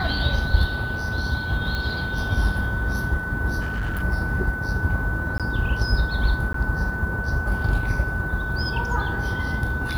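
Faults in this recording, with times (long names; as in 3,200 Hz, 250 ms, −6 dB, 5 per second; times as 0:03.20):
whistle 1,500 Hz −28 dBFS
0:01.75: click −16 dBFS
0:03.60–0:04.03: clipping −22.5 dBFS
0:05.38–0:05.40: drop-out 17 ms
0:06.53–0:06.54: drop-out 13 ms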